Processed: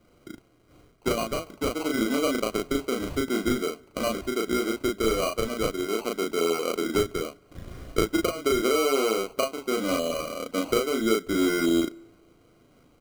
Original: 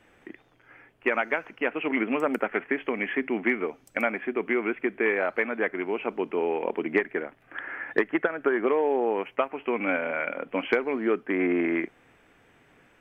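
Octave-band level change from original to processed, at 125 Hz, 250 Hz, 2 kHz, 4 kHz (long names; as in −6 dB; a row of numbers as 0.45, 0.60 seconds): +9.5 dB, +2.0 dB, −6.0 dB, can't be measured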